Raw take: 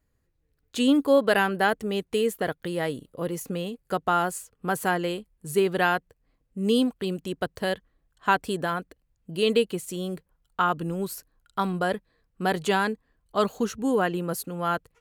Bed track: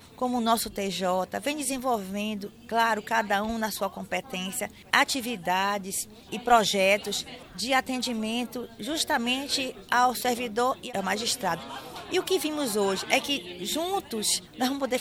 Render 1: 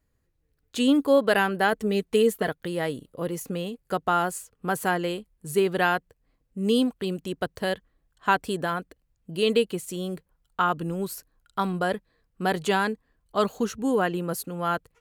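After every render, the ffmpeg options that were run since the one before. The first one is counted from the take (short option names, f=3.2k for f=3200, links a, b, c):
-filter_complex "[0:a]asettb=1/sr,asplit=3[a][b][c];[a]atrim=end=1.724[d];[b]atrim=start=1.72:end=2.49,asetpts=PTS-STARTPTS,afade=t=in:d=0.004:c=qsin,afade=t=out:st=0.766:d=0.004:c=qsin,aecho=1:1:4.6:0.64,atrim=end_sample=33957[e];[c]atrim=start=2.486[f];[d][e]acrossfade=d=0.004:c1=hsin:c2=qsin[g];[g][f]acrossfade=d=0.004:c1=qsin:c2=hsin"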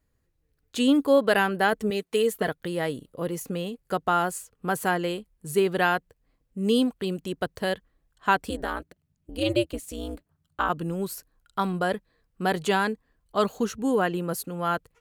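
-filter_complex "[0:a]asettb=1/sr,asplit=3[a][b][c];[a]atrim=end=1.904[d];[b]atrim=start=1.9:end=2.34,asetpts=PTS-STARTPTS,afade=t=in:d=0.004:c=qsin,afade=t=out:st=0.436:d=0.004:c=qsin,highpass=f=390:p=1[e];[c]atrim=start=2.336[f];[d][e]acrossfade=d=0.004:c1=hsin:c2=qsin[g];[g][f]acrossfade=d=0.004:c1=qsin:c2=hsin,asplit=3[h][i][j];[h]afade=t=out:st=8.49:d=0.02[k];[i]aeval=exprs='val(0)*sin(2*PI*120*n/s)':c=same,afade=t=in:st=8.49:d=0.02,afade=t=out:st=10.68:d=0.02[l];[j]afade=t=in:st=10.68:d=0.02[m];[k][l][m]amix=inputs=3:normalize=0"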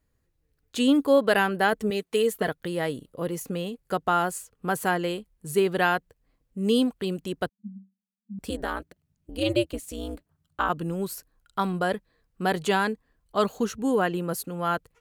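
-filter_complex "[0:a]asettb=1/sr,asplit=3[a][b][c];[a]atrim=end=7.494[d];[b]atrim=start=7.49:end=8.39,asetpts=PTS-STARTPTS,afade=t=in:d=0.004:c=qsin,afade=t=out:st=0.896:d=0.004:c=qsin,asuperpass=centerf=210:order=12:qfactor=5.3[e];[c]atrim=start=8.386[f];[d][e]acrossfade=d=0.004:c1=hsin:c2=qsin[g];[g][f]acrossfade=d=0.004:c1=qsin:c2=hsin"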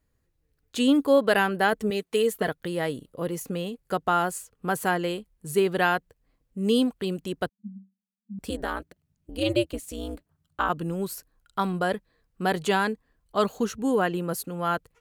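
-af anull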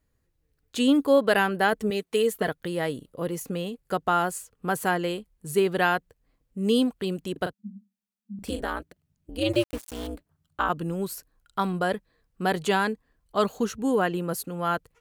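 -filter_complex "[0:a]asettb=1/sr,asplit=3[a][b][c];[a]atrim=end=7.324[d];[b]atrim=start=7.32:end=8.61,asetpts=PTS-STARTPTS,afade=t=in:d=0.004:c=qsin,afade=t=out:st=1.286:d=0.004:c=qsin,asplit=2[e][f];[f]adelay=39,volume=-8dB[g];[e][g]amix=inputs=2:normalize=0,atrim=end_sample=56889[h];[c]atrim=start=8.606[i];[d][h]acrossfade=d=0.004:c1=hsin:c2=qsin[j];[j][i]acrossfade=d=0.004:c1=qsin:c2=hsin,asettb=1/sr,asplit=3[k][l][m];[k]atrim=end=9.534[n];[l]atrim=start=9.53:end=10.07,asetpts=PTS-STARTPTS,afade=t=in:d=0.004:c=qsin,afade=t=out:st=0.536:d=0.004:c=qsin,aeval=exprs='val(0)*gte(abs(val(0)),0.0178)':c=same[o];[m]atrim=start=10.066[p];[n][o]acrossfade=d=0.004:c1=hsin:c2=qsin[q];[q][p]acrossfade=d=0.004:c1=qsin:c2=hsin"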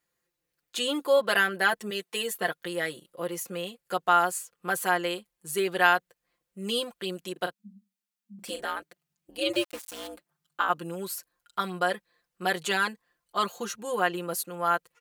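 -af "highpass=f=910:p=1,aecho=1:1:5.7:0.82"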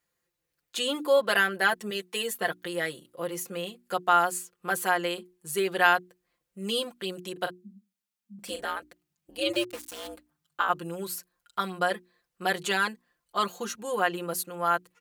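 -af "equalizer=f=75:t=o:w=1:g=7,bandreject=f=60:t=h:w=6,bandreject=f=120:t=h:w=6,bandreject=f=180:t=h:w=6,bandreject=f=240:t=h:w=6,bandreject=f=300:t=h:w=6,bandreject=f=360:t=h:w=6"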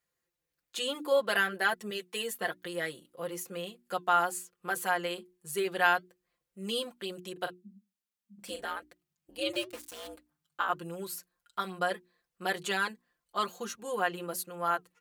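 -af "flanger=delay=1.6:depth=2.9:regen=-76:speed=1.1:shape=sinusoidal"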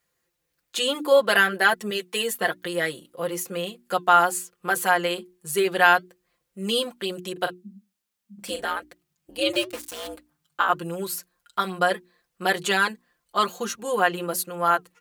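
-af "volume=9dB,alimiter=limit=-2dB:level=0:latency=1"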